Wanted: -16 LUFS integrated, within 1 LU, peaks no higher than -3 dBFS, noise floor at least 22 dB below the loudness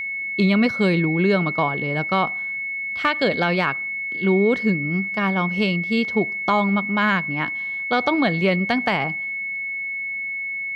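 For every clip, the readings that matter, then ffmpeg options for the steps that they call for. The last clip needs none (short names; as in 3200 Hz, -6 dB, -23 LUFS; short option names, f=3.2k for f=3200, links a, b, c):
steady tone 2200 Hz; tone level -25 dBFS; loudness -21.0 LUFS; peak -6.0 dBFS; loudness target -16.0 LUFS
-> -af "bandreject=f=2.2k:w=30"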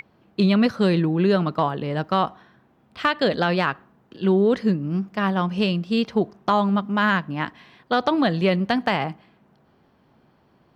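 steady tone none; loudness -22.0 LUFS; peak -7.0 dBFS; loudness target -16.0 LUFS
-> -af "volume=6dB,alimiter=limit=-3dB:level=0:latency=1"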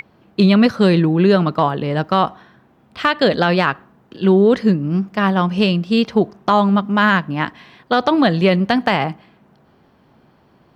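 loudness -16.5 LUFS; peak -3.0 dBFS; noise floor -54 dBFS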